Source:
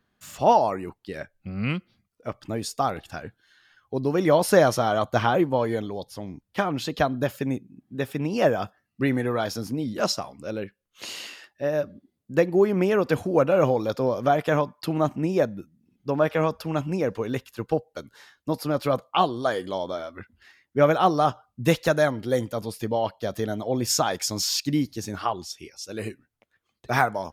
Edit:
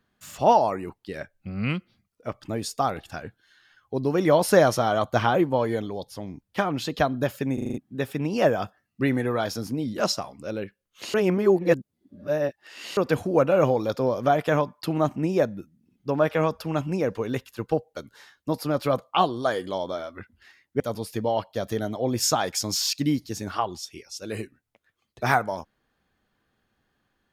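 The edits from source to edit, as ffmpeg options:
-filter_complex "[0:a]asplit=10[a][b][c][d][e][f][g][h][i][j];[a]atrim=end=7.582[k];[b]atrim=start=7.538:end=7.582[l];[c]atrim=start=7.538:end=7.582[m];[d]atrim=start=7.538:end=7.582[n];[e]atrim=start=7.538:end=7.582[o];[f]atrim=start=7.538:end=7.582[p];[g]atrim=start=7.778:end=11.142[q];[h]atrim=start=11.138:end=12.972,asetpts=PTS-STARTPTS,areverse[r];[i]atrim=start=12.968:end=20.802[s];[j]atrim=start=22.468[t];[k][l]acrossfade=d=0.004:c1=hsin:c2=hsin[u];[u][m]acrossfade=d=0.004:c1=hsin:c2=hsin[v];[v][n]acrossfade=d=0.004:c1=hsin:c2=hsin[w];[w][o]acrossfade=d=0.004:c1=hsin:c2=hsin[x];[x][p]acrossfade=d=0.004:c1=hsin:c2=hsin[y];[y][q]acrossfade=d=0.004:c1=hsin:c2=hsin[z];[z][r]acrossfade=d=0.004:c1=hsin:c2=hsin[aa];[aa][s]acrossfade=d=0.004:c1=hsin:c2=hsin[ab];[ab][t]acrossfade=d=0.004:c1=hsin:c2=hsin"

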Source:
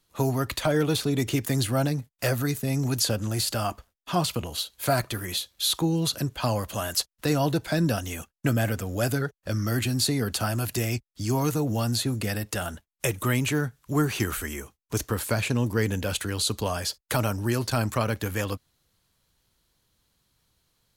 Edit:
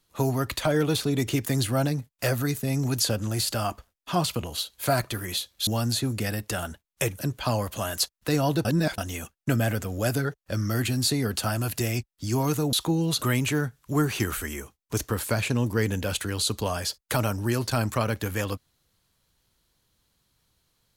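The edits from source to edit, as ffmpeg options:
-filter_complex "[0:a]asplit=7[a][b][c][d][e][f][g];[a]atrim=end=5.672[h];[b]atrim=start=11.698:end=13.222[i];[c]atrim=start=6.158:end=7.622[j];[d]atrim=start=7.618:end=7.952,asetpts=PTS-STARTPTS,areverse[k];[e]atrim=start=7.948:end=11.702[l];[f]atrim=start=5.668:end=6.162[m];[g]atrim=start=13.218[n];[h][i]acrossfade=d=0.004:c1=hsin:c2=hsin[o];[o][j]acrossfade=d=0.004:c1=hsin:c2=hsin[p];[p][k]acrossfade=d=0.004:c1=hsin:c2=hsin[q];[q][l]acrossfade=d=0.004:c1=hsin:c2=hsin[r];[r][m]acrossfade=d=0.004:c1=hsin:c2=hsin[s];[s][n]acrossfade=d=0.004:c1=hsin:c2=hsin"

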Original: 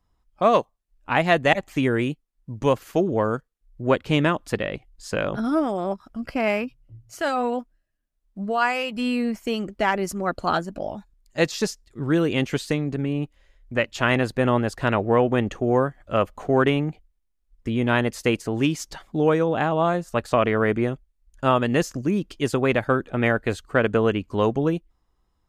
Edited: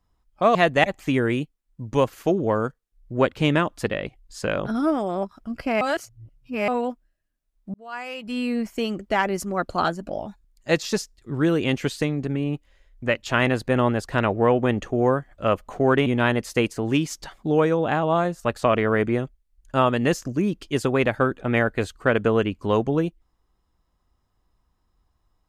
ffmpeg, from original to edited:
-filter_complex "[0:a]asplit=6[a][b][c][d][e][f];[a]atrim=end=0.552[g];[b]atrim=start=1.238:end=6.502[h];[c]atrim=start=6.498:end=7.372,asetpts=PTS-STARTPTS,areverse[i];[d]atrim=start=7.368:end=8.43,asetpts=PTS-STARTPTS,afade=t=out:st=1.058:d=0.004:c=hsin[j];[e]atrim=start=8.43:end=16.752,asetpts=PTS-STARTPTS,afade=t=in:d=0.88[k];[f]atrim=start=17.748[l];[g][h]acrossfade=d=0.004:c1=hsin:c2=hsin[m];[m][i]acrossfade=d=0.004:c1=hsin:c2=hsin[n];[j][k]concat=n=2:v=0:a=1[o];[n][o]acrossfade=d=0.004:c1=hsin:c2=hsin[p];[p][l]acrossfade=d=0.004:c1=hsin:c2=hsin"

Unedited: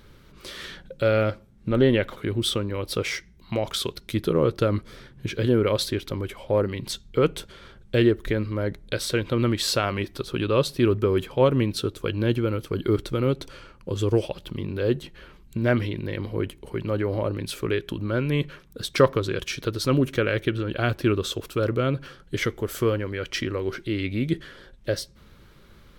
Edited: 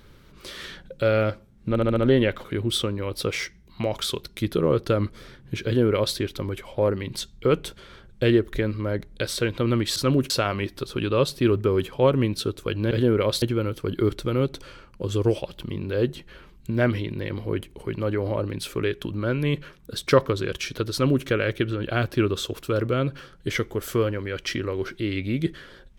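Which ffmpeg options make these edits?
-filter_complex "[0:a]asplit=9[a][b][c][d][e][f][g][h][i];[a]atrim=end=1.762[j];[b]atrim=start=1.688:end=1.762[k];[c]atrim=start=1.688:end=1.762[l];[d]atrim=start=1.688:end=1.762[m];[e]atrim=start=1.688:end=9.682[n];[f]atrim=start=19.788:end=20.132[o];[g]atrim=start=9.678:end=12.292[p];[h]atrim=start=5.368:end=5.882[q];[i]atrim=start=12.288[r];[j][k]acrossfade=d=0.004:c1=hsin:c2=hsin[s];[s][l]acrossfade=d=0.004:c1=hsin:c2=hsin[t];[t][m]acrossfade=d=0.004:c1=hsin:c2=hsin[u];[u][n]acrossfade=d=0.004:c1=hsin:c2=hsin[v];[v][o]acrossfade=d=0.004:c1=hsin:c2=hsin[w];[w][p]acrossfade=d=0.004:c1=hsin:c2=hsin[x];[x][q]acrossfade=d=0.004:c1=hsin:c2=hsin[y];[y][r]acrossfade=d=0.004:c1=hsin:c2=hsin"

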